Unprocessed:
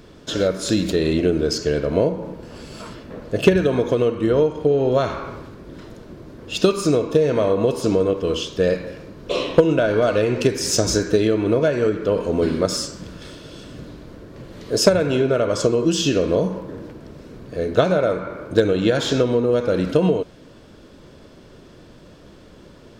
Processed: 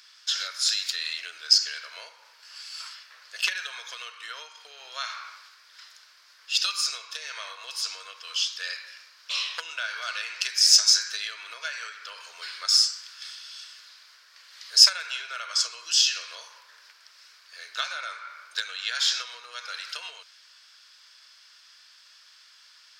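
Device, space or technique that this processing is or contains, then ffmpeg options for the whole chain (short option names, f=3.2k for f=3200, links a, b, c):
headphones lying on a table: -af "highpass=f=1.4k:w=0.5412,highpass=f=1.4k:w=1.3066,equalizer=f=5k:t=o:w=0.57:g=11,volume=-1.5dB"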